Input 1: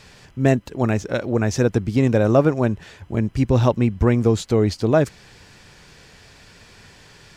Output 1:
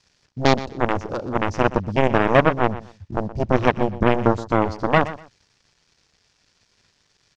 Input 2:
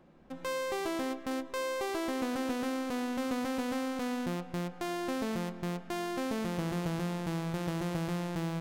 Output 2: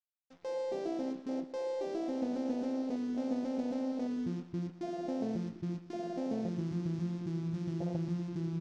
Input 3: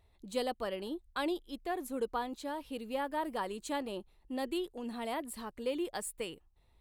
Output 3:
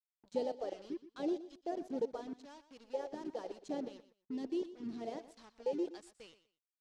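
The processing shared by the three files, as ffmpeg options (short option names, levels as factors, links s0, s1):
-filter_complex "[0:a]aeval=exprs='0.794*(cos(1*acos(clip(val(0)/0.794,-1,1)))-cos(1*PI/2))+0.224*(cos(7*acos(clip(val(0)/0.794,-1,1)))-cos(7*PI/2))':c=same,acrusher=bits=6:mix=0:aa=0.5,lowpass=f=5700:t=q:w=2.2,afwtdn=0.0447,asplit=2[s0][s1];[s1]aecho=0:1:122|244:0.178|0.0373[s2];[s0][s2]amix=inputs=2:normalize=0"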